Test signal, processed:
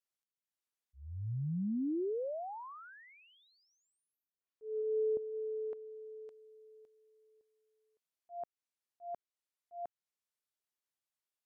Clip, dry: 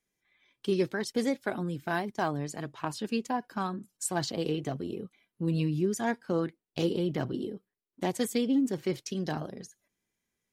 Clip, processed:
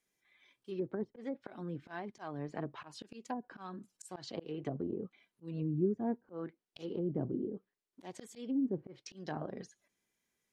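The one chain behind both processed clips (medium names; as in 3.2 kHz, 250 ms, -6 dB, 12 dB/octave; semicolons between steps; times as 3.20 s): slow attack 381 ms; bass shelf 180 Hz -8 dB; low-pass that closes with the level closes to 420 Hz, closed at -33 dBFS; trim +1 dB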